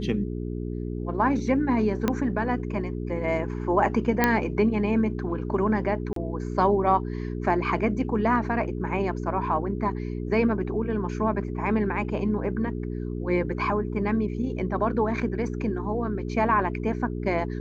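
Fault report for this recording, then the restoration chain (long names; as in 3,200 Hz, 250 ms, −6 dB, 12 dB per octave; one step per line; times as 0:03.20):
mains hum 60 Hz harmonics 7 −31 dBFS
0:02.08: click −10 dBFS
0:04.24: click −6 dBFS
0:06.13–0:06.16: drop-out 33 ms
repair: click removal
hum removal 60 Hz, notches 7
repair the gap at 0:06.13, 33 ms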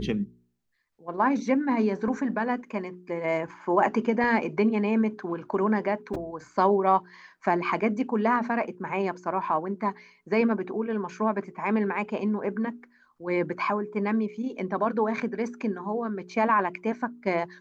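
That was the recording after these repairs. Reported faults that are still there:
0:02.08: click
0:04.24: click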